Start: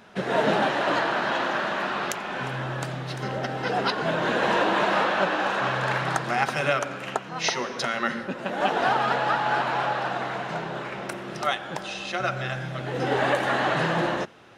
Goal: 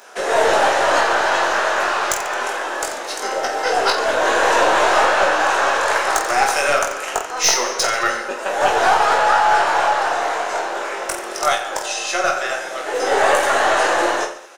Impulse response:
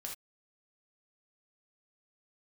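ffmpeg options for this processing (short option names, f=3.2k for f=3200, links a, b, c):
-filter_complex "[0:a]highpass=f=410:w=0.5412,highpass=f=410:w=1.3066,highshelf=f=4.9k:t=q:w=1.5:g=10,aeval=exprs='(tanh(6.31*val(0)+0.2)-tanh(0.2))/6.31':c=same,aecho=1:1:20|48|87.2|142.1|218.9:0.631|0.398|0.251|0.158|0.1,asplit=2[a][b];[1:a]atrim=start_sample=2205,lowpass=5.3k[c];[b][c]afir=irnorm=-1:irlink=0,volume=-9dB[d];[a][d]amix=inputs=2:normalize=0,volume=6.5dB"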